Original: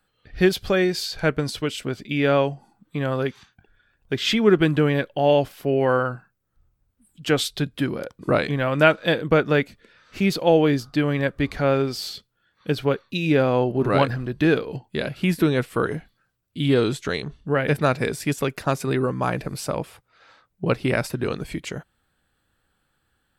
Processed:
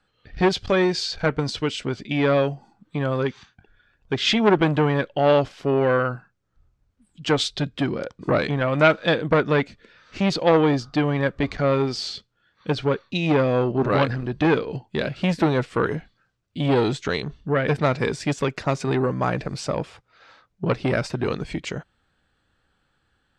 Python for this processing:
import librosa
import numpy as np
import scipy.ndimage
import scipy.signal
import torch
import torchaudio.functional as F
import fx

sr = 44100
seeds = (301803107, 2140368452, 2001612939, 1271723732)

y = scipy.signal.sosfilt(scipy.signal.butter(4, 7000.0, 'lowpass', fs=sr, output='sos'), x)
y = fx.transformer_sat(y, sr, knee_hz=1100.0)
y = y * librosa.db_to_amplitude(2.0)